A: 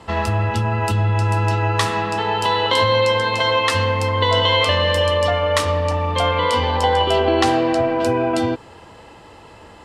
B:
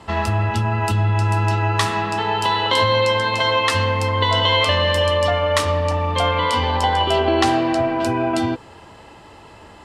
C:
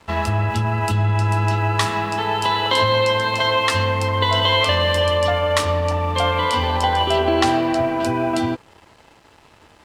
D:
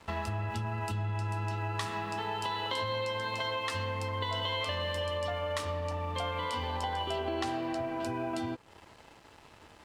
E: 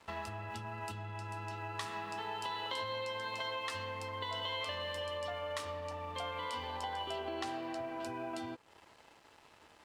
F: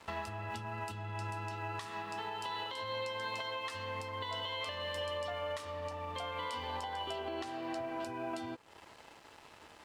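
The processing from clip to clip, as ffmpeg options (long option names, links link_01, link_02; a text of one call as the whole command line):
ffmpeg -i in.wav -af "bandreject=frequency=490:width=12" out.wav
ffmpeg -i in.wav -af "aeval=exprs='sgn(val(0))*max(abs(val(0))-0.00631,0)':channel_layout=same" out.wav
ffmpeg -i in.wav -af "acompressor=threshold=-31dB:ratio=2.5,volume=-5dB" out.wav
ffmpeg -i in.wav -af "lowshelf=frequency=230:gain=-9,volume=-4.5dB" out.wav
ffmpeg -i in.wav -af "alimiter=level_in=10dB:limit=-24dB:level=0:latency=1:release=462,volume=-10dB,volume=5dB" out.wav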